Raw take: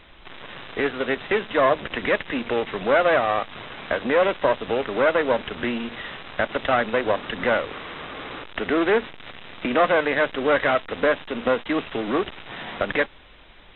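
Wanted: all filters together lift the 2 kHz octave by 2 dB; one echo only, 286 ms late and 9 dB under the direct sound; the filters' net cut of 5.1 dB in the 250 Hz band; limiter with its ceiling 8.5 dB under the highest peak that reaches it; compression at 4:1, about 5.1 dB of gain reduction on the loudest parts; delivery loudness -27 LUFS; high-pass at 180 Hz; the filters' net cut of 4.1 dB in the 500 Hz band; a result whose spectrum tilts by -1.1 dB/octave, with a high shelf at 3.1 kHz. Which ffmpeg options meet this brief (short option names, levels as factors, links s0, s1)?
-af "highpass=180,equalizer=f=250:t=o:g=-4,equalizer=f=500:t=o:g=-4,equalizer=f=2000:t=o:g=5,highshelf=f=3100:g=-7,acompressor=threshold=0.0794:ratio=4,alimiter=limit=0.112:level=0:latency=1,aecho=1:1:286:0.355,volume=1.5"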